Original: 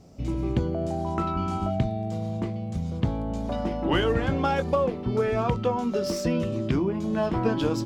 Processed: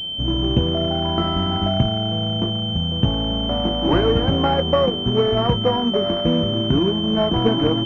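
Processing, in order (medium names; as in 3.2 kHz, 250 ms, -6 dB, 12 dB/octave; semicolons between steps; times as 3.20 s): sorted samples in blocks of 8 samples; class-D stage that switches slowly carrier 3.1 kHz; trim +6.5 dB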